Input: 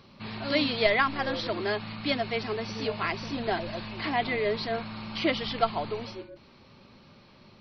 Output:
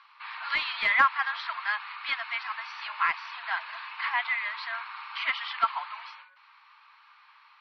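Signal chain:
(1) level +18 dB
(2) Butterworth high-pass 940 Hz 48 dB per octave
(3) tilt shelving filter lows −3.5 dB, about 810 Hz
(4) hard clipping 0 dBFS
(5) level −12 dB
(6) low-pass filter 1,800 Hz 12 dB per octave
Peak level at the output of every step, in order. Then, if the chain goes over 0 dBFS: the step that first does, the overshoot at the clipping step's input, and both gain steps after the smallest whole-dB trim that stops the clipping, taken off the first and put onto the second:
+9.0, +5.5, +7.5, 0.0, −12.0, −11.5 dBFS
step 1, 7.5 dB
step 1 +10 dB, step 5 −4 dB

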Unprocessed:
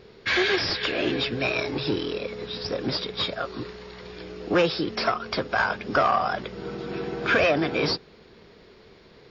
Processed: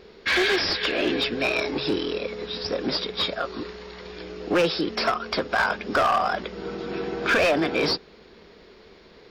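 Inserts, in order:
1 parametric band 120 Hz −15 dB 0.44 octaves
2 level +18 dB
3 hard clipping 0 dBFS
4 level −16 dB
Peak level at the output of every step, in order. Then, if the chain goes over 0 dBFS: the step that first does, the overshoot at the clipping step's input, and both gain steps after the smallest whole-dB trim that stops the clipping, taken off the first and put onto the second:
−9.5, +8.5, 0.0, −16.0 dBFS
step 2, 8.5 dB
step 2 +9 dB, step 4 −7 dB

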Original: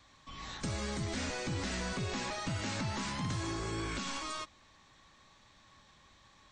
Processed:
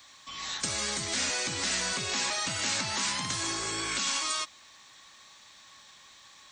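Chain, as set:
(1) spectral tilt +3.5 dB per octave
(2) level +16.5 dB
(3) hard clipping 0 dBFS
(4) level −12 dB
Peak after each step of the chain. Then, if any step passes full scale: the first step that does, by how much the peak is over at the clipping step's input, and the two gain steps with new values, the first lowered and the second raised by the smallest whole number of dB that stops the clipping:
−20.5, −4.0, −4.0, −16.0 dBFS
no step passes full scale

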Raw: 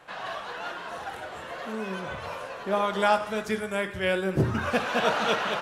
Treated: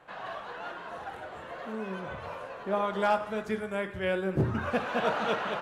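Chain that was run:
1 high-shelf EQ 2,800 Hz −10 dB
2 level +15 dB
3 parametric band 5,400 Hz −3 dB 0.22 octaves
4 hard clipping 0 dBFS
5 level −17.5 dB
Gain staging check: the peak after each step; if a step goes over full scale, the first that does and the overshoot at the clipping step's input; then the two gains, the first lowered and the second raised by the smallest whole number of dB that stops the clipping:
−11.0, +4.0, +4.0, 0.0, −17.5 dBFS
step 2, 4.0 dB
step 2 +11 dB, step 5 −13.5 dB

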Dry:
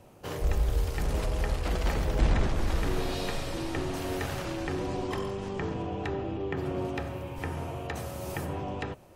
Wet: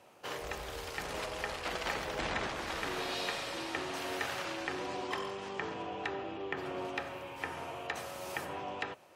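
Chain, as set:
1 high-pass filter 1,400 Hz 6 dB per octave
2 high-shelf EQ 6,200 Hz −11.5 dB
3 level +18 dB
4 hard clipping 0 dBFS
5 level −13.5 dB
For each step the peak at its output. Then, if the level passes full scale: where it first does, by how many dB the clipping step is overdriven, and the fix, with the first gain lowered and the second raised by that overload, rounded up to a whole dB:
−21.5, −23.0, −5.0, −5.0, −18.5 dBFS
no step passes full scale

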